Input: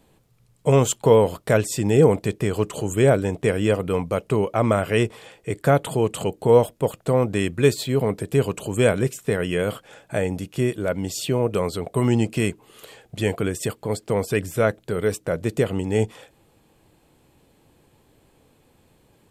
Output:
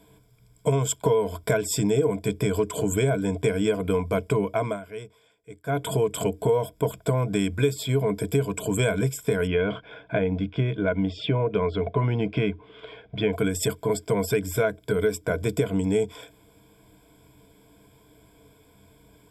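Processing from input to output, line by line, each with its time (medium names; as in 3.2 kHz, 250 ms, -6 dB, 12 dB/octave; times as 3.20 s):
4.46–5.98 s: dip -20.5 dB, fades 0.33 s
9.47–13.33 s: low-pass 3.3 kHz 24 dB/octave
whole clip: rippled EQ curve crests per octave 1.7, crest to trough 15 dB; compression 5:1, threshold -20 dBFS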